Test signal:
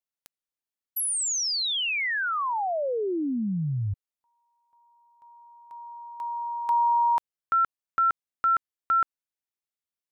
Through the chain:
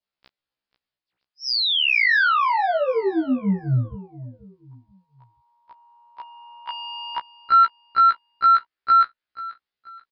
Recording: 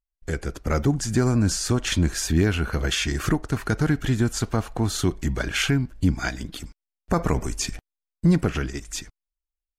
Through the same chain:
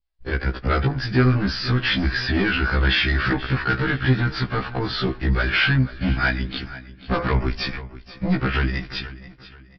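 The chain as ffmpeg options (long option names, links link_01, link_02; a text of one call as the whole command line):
ffmpeg -i in.wav -filter_complex "[0:a]adynamicequalizer=threshold=0.00794:dfrequency=1700:dqfactor=1.1:tfrequency=1700:tqfactor=1.1:attack=5:release=100:ratio=0.375:range=4:mode=boostabove:tftype=bell,asplit=2[link_01][link_02];[link_02]acompressor=threshold=-33dB:ratio=6:release=287,volume=-2dB[link_03];[link_01][link_03]amix=inputs=2:normalize=0,asoftclip=type=tanh:threshold=-17dB,aecho=1:1:484|968|1452:0.15|0.0539|0.0194,aresample=11025,aresample=44100,afftfilt=real='re*1.73*eq(mod(b,3),0)':imag='im*1.73*eq(mod(b,3),0)':win_size=2048:overlap=0.75,volume=5.5dB" out.wav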